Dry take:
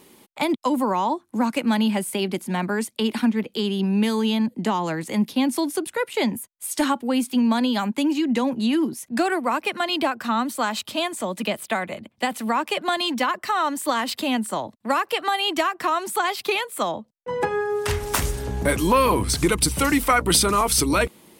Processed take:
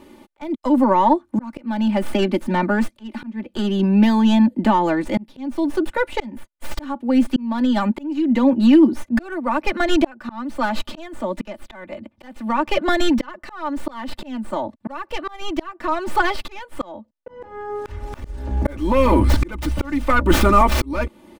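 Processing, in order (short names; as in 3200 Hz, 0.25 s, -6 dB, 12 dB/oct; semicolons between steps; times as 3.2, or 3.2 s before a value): tracing distortion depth 0.34 ms; LPF 1500 Hz 6 dB/oct; low shelf 73 Hz +8 dB; comb 3.4 ms, depth 76%; auto swell 0.554 s; gain +5.5 dB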